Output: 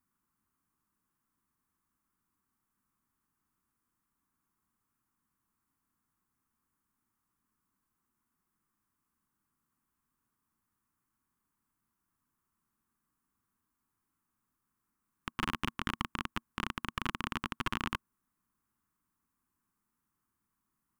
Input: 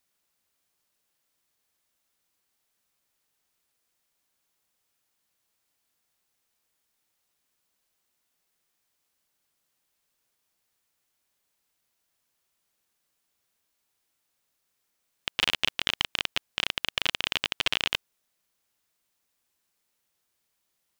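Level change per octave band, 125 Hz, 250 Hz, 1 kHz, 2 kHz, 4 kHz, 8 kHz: +5.0 dB, +6.0 dB, +1.0 dB, -9.0 dB, -16.0 dB, -11.5 dB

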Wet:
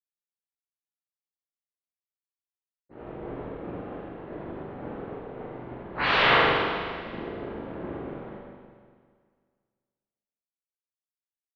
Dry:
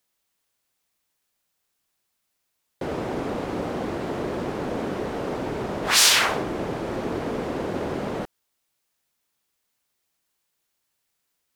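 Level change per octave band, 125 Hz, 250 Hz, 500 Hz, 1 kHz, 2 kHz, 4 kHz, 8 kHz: -5.5 dB, -7.0 dB, -4.0 dB, +0.5 dB, +0.5 dB, -7.0 dB, under -35 dB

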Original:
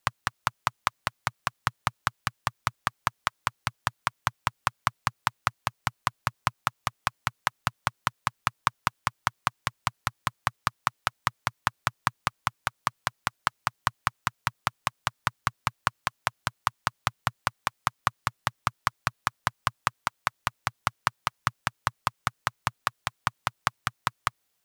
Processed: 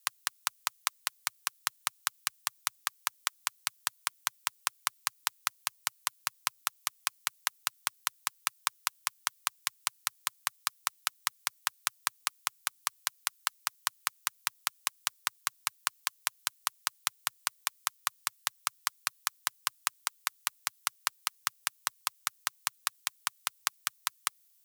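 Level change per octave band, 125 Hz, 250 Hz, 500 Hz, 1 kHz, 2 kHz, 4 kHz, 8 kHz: -29.0 dB, under -20 dB, -15.0 dB, -10.0 dB, -6.0 dB, +0.5 dB, +6.0 dB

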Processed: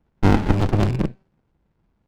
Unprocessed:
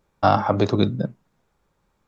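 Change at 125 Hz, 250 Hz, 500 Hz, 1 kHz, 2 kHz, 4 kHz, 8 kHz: +5.5 dB, +2.5 dB, -4.0 dB, -6.5 dB, +2.0 dB, -3.5 dB, no reading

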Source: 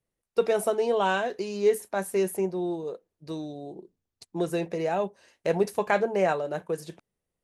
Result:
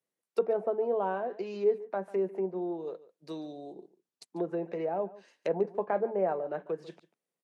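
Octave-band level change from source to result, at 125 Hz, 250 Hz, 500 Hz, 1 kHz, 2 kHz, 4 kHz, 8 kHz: -8.5 dB, -5.5 dB, -4.0 dB, -6.0 dB, -13.5 dB, -14.5 dB, under -20 dB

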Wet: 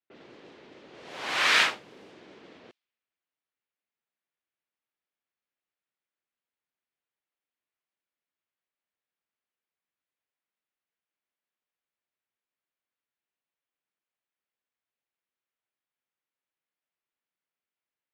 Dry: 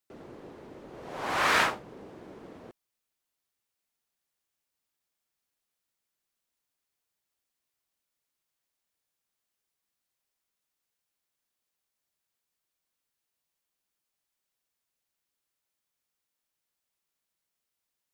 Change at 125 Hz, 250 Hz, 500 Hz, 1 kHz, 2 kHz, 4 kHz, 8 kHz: -9.0 dB, -5.5 dB, -4.5 dB, -3.0 dB, +3.0 dB, +7.0 dB, +3.0 dB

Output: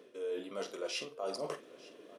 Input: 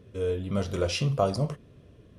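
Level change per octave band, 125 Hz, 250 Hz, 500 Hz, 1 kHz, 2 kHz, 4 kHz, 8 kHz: -31.5 dB, -15.5 dB, -9.0 dB, -11.0 dB, -6.5 dB, -6.5 dB, -6.5 dB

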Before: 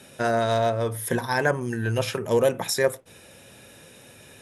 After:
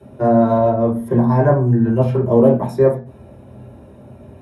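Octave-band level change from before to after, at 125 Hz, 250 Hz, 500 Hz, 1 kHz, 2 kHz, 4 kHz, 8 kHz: +12.5 dB, +15.0 dB, +8.0 dB, +6.0 dB, -7.5 dB, under -15 dB, under -15 dB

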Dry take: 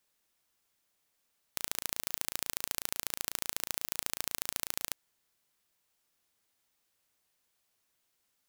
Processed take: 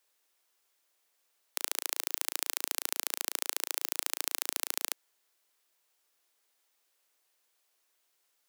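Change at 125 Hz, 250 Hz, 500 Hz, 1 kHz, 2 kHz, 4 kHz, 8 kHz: under -20 dB, -4.0 dB, +2.0 dB, +2.5 dB, +2.5 dB, +2.5 dB, +2.5 dB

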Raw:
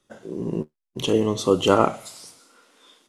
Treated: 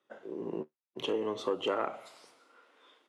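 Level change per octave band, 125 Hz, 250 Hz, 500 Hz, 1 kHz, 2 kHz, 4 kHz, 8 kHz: -22.5 dB, -15.0 dB, -11.5 dB, -13.0 dB, -9.5 dB, -11.0 dB, -21.0 dB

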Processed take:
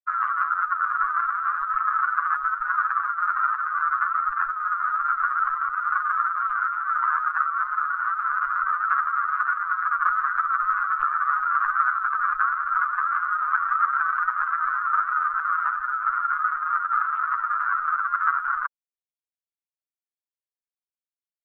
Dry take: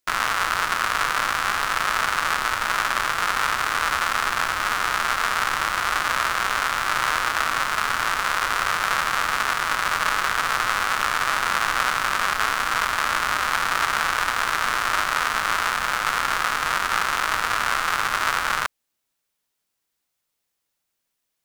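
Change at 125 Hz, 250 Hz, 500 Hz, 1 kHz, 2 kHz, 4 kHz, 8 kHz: under -30 dB, under -40 dB, under -30 dB, +0.5 dB, -4.0 dB, under -35 dB, under -40 dB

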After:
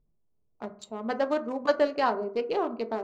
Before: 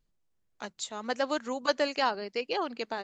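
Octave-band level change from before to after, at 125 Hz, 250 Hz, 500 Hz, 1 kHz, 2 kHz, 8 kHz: no reading, +4.0 dB, +4.5 dB, +2.0 dB, -2.0 dB, under -10 dB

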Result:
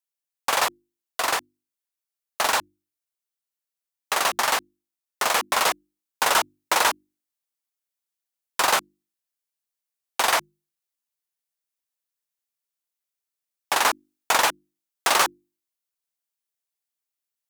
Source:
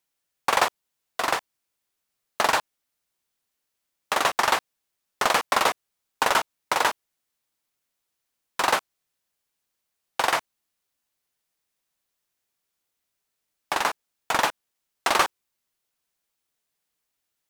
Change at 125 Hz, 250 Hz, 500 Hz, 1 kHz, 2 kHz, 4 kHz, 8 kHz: -3.5 dB, -2.5 dB, -0.5 dB, +0.5 dB, +1.5 dB, +3.0 dB, +6.0 dB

